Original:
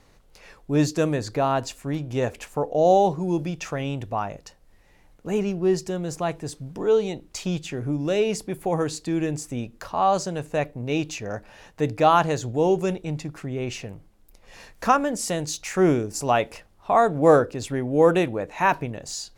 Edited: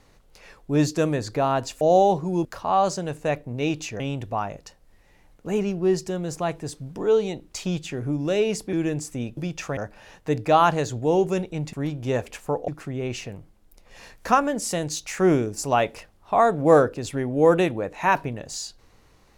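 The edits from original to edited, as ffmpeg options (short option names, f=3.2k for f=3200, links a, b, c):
-filter_complex "[0:a]asplit=9[a][b][c][d][e][f][g][h][i];[a]atrim=end=1.812[j];[b]atrim=start=2.758:end=3.402[k];[c]atrim=start=9.738:end=11.292[l];[d]atrim=start=3.798:end=8.532[m];[e]atrim=start=9.098:end=9.742[n];[f]atrim=start=3.398:end=3.802[o];[g]atrim=start=11.288:end=13.252[p];[h]atrim=start=1.808:end=2.762[q];[i]atrim=start=13.248[r];[j][k]acrossfade=d=0.004:c1=hsin:c2=hsin[s];[s][l]acrossfade=d=0.004:c1=hsin:c2=hsin[t];[t][m]acrossfade=d=0.004:c1=hsin:c2=hsin[u];[u][n]acrossfade=d=0.004:c1=hsin:c2=hsin[v];[v][o]acrossfade=d=0.004:c1=hsin:c2=hsin[w];[w][p]acrossfade=d=0.004:c1=hsin:c2=hsin[x];[x][q]acrossfade=d=0.004:c1=hsin:c2=hsin[y];[y][r]acrossfade=d=0.004:c1=hsin:c2=hsin"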